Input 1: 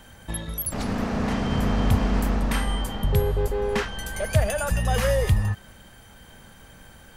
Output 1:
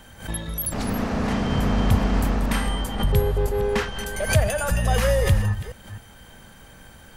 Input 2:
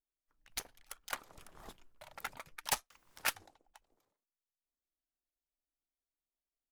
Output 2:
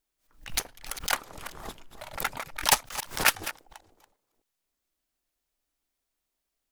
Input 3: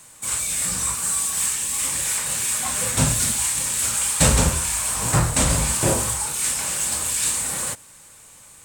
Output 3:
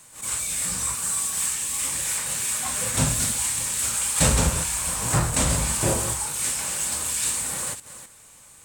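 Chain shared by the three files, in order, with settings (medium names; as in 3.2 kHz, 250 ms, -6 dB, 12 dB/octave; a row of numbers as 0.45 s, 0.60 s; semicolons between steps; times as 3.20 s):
chunks repeated in reverse 260 ms, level -13 dB; swell ahead of each attack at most 150 dB/s; peak normalisation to -6 dBFS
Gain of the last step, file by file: +1.5 dB, +11.5 dB, -3.0 dB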